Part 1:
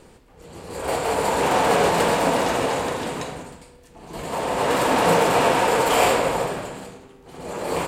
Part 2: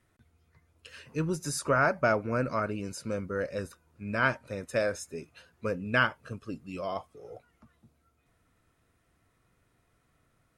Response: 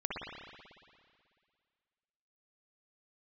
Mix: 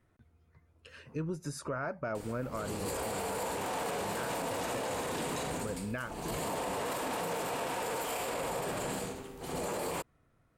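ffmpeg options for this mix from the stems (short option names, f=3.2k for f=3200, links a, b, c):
-filter_complex "[0:a]acompressor=threshold=-28dB:ratio=6,highshelf=f=8.6k:g=11,adelay=2150,volume=1.5dB[a];[1:a]highshelf=f=2.1k:g=-10,acompressor=threshold=-36dB:ratio=2.5,volume=1dB[b];[a][b]amix=inputs=2:normalize=0,alimiter=level_in=3dB:limit=-24dB:level=0:latency=1:release=31,volume=-3dB"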